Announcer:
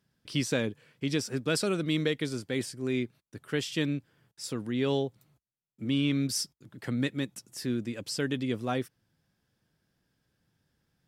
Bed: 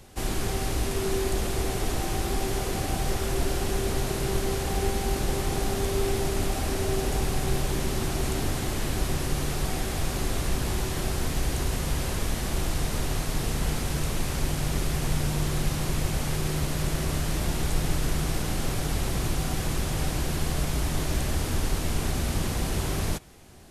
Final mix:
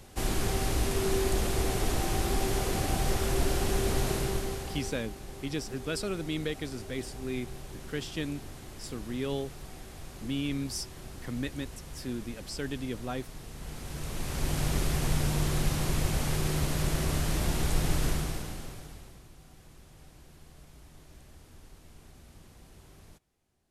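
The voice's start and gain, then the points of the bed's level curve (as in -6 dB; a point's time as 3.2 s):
4.40 s, -5.0 dB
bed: 4.13 s -1 dB
5.13 s -16.5 dB
13.5 s -16.5 dB
14.58 s -1.5 dB
18.08 s -1.5 dB
19.27 s -26 dB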